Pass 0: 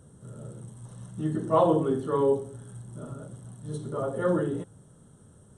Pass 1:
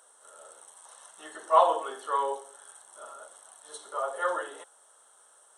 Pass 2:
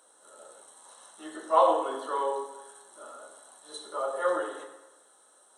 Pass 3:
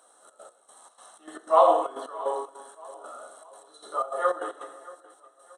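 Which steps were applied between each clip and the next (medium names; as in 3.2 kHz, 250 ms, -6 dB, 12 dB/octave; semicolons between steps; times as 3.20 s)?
high-pass 720 Hz 24 dB/octave; trim +6 dB
small resonant body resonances 250/4000 Hz, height 13 dB, ringing for 20 ms; reverberation RT60 1.1 s, pre-delay 4 ms, DRR 2.5 dB; trim -3.5 dB
small resonant body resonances 710/1200 Hz, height 9 dB, ringing for 25 ms; trance gate "xxx.x..xx.xx.x.x" 153 bpm -12 dB; feedback delay 628 ms, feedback 41%, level -20 dB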